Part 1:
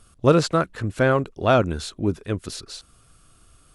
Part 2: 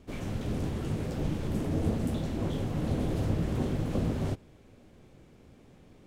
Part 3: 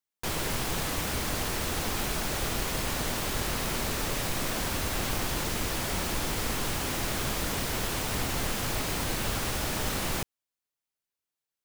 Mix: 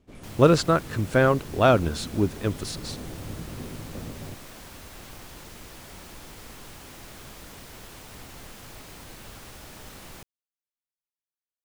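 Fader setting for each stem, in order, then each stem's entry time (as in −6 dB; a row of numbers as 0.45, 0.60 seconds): −0.5, −8.5, −13.5 decibels; 0.15, 0.00, 0.00 seconds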